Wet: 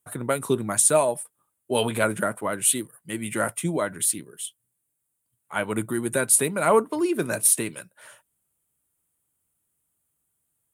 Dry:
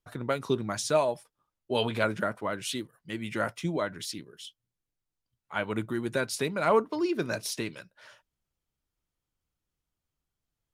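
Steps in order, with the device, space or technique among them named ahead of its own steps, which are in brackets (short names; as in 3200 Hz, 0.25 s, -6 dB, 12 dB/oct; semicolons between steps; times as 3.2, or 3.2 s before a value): budget condenser microphone (HPF 90 Hz; resonant high shelf 7000 Hz +11 dB, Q 3); gain +4.5 dB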